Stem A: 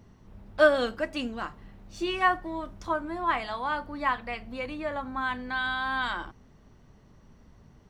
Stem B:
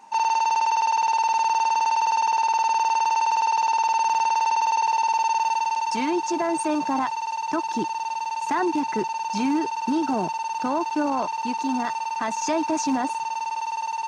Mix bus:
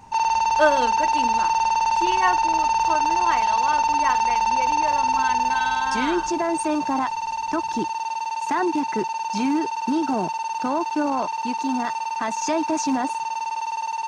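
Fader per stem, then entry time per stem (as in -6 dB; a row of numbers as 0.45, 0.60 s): +1.0, +1.0 dB; 0.00, 0.00 s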